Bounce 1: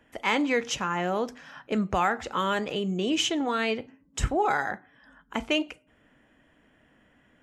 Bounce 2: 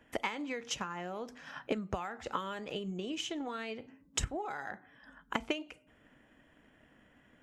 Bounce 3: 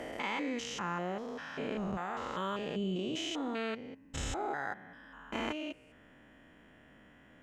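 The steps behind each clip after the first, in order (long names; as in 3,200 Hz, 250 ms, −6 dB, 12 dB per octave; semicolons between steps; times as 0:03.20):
downward compressor 6 to 1, threshold −35 dBFS, peak gain reduction 15 dB; transient designer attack +8 dB, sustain +2 dB; level −2.5 dB
spectrum averaged block by block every 200 ms; high-shelf EQ 6,600 Hz −5 dB; level +6 dB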